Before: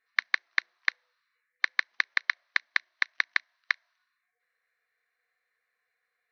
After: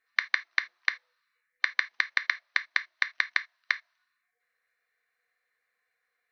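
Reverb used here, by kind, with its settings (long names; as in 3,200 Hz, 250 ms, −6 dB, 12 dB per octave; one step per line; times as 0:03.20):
reverb whose tail is shaped and stops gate 100 ms falling, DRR 11 dB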